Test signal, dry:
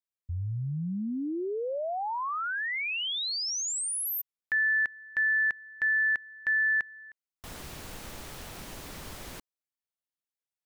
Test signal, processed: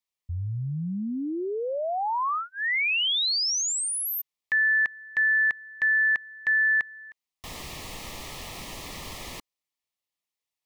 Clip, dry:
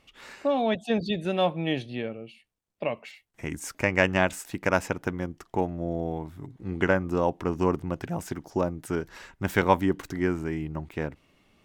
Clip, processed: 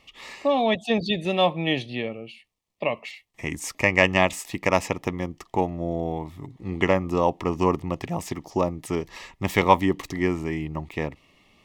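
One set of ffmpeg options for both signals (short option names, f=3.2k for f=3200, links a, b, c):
-filter_complex "[0:a]asuperstop=centerf=1500:order=4:qfactor=3.1,acrossover=split=860|6500[a][b][c];[a]aeval=exprs='clip(val(0),-1,0.15)':c=same[d];[b]acontrast=32[e];[d][e][c]amix=inputs=3:normalize=0,volume=2dB"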